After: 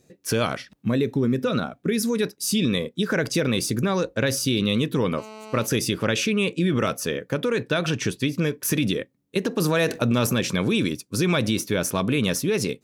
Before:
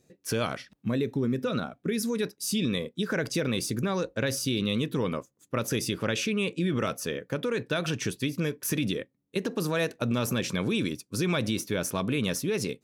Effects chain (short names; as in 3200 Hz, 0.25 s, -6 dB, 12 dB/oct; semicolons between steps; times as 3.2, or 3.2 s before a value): 5.18–5.66 GSM buzz -46 dBFS; 7.7–8.54 high shelf 10000 Hz -8 dB; 9.6–10.27 fast leveller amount 50%; gain +5.5 dB